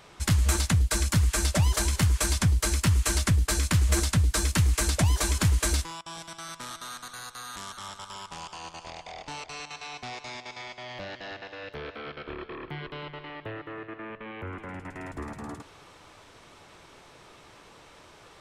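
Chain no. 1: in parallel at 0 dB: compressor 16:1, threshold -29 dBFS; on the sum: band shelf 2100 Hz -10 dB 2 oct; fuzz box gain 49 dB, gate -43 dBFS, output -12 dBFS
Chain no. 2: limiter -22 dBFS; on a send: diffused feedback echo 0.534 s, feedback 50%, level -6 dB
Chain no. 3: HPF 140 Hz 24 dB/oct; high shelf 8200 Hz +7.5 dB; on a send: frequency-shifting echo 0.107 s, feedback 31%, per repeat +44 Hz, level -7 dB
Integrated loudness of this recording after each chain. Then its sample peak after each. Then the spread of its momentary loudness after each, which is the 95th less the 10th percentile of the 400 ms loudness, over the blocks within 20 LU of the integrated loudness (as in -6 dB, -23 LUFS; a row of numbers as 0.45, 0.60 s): -15.5, -32.5, -29.0 LUFS; -9.5, -16.5, -10.5 dBFS; 15, 19, 15 LU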